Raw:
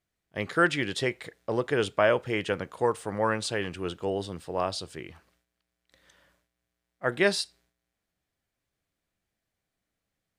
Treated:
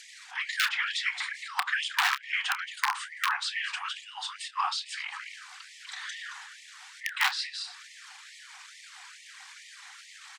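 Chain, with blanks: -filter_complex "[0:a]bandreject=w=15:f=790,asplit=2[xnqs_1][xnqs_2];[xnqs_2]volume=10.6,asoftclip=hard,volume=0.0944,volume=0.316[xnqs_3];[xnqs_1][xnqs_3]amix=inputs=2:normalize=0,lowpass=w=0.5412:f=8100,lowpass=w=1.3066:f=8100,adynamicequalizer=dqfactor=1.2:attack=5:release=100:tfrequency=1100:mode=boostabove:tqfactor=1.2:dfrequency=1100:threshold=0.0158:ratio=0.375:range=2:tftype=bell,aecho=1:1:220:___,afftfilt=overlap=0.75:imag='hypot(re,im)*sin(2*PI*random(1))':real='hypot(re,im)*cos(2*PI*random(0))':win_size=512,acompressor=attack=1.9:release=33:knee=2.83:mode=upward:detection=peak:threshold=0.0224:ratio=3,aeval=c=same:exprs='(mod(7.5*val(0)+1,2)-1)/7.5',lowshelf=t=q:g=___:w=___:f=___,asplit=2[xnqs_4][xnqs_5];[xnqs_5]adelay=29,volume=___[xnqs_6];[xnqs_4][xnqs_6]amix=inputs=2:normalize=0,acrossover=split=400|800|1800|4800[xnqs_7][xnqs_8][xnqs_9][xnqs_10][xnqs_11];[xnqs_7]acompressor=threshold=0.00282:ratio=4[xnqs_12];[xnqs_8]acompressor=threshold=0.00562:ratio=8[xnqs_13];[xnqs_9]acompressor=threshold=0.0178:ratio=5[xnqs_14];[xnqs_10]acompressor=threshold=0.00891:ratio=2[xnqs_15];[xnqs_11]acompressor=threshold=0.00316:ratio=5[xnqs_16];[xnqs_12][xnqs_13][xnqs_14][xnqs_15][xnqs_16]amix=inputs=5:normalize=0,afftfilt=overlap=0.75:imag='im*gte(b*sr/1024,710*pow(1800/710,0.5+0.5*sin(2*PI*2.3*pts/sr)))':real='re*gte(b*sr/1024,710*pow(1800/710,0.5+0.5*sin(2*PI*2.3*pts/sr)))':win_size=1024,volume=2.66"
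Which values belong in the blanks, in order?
0.0944, -8, 1.5, 470, 0.251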